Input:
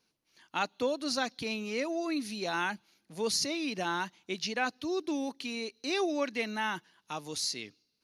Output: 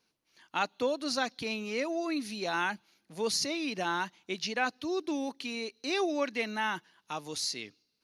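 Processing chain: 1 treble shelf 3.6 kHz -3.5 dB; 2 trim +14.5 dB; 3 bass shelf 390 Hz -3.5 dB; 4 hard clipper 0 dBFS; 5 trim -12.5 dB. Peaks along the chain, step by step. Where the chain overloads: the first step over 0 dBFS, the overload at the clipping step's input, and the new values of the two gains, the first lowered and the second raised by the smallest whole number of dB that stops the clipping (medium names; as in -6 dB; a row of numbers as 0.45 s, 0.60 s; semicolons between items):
-16.5 dBFS, -2.0 dBFS, -2.5 dBFS, -2.5 dBFS, -15.0 dBFS; nothing clips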